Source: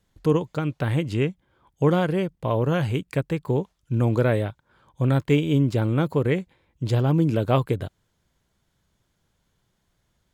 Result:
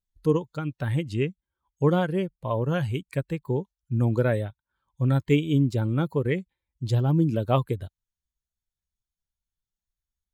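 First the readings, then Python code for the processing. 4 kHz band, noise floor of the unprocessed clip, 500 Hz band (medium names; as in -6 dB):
-3.0 dB, -72 dBFS, -3.0 dB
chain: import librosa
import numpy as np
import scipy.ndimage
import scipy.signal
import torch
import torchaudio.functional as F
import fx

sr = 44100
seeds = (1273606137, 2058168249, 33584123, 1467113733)

y = fx.bin_expand(x, sr, power=1.5)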